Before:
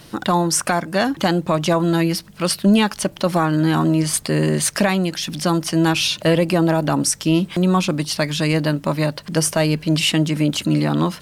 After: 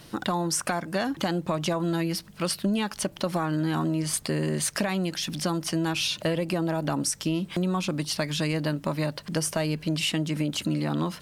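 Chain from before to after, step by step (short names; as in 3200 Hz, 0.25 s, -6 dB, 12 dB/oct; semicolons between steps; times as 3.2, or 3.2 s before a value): compressor, threshold -18 dBFS, peak gain reduction 7.5 dB; gain -5 dB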